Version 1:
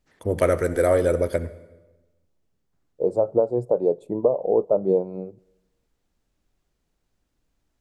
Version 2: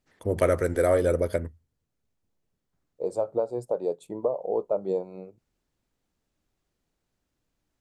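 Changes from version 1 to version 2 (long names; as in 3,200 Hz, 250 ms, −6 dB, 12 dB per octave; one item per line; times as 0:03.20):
second voice: add tilt shelving filter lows −9.5 dB, about 1,200 Hz
reverb: off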